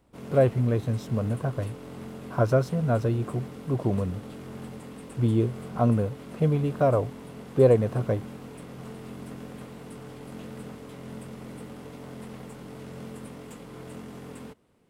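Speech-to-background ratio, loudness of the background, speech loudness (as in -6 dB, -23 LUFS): 15.5 dB, -41.5 LUFS, -26.0 LUFS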